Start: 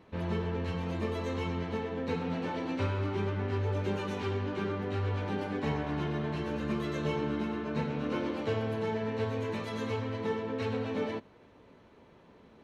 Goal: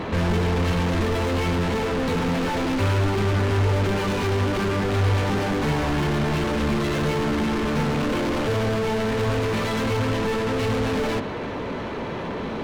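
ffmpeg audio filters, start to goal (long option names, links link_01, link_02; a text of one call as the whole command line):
ffmpeg -i in.wav -filter_complex "[0:a]lowshelf=frequency=330:gain=7.5,asplit=2[link_01][link_02];[link_02]highpass=frequency=720:poles=1,volume=39dB,asoftclip=type=tanh:threshold=-20dB[link_03];[link_01][link_03]amix=inputs=2:normalize=0,lowpass=frequency=3800:poles=1,volume=-6dB,lowshelf=frequency=140:gain=11" out.wav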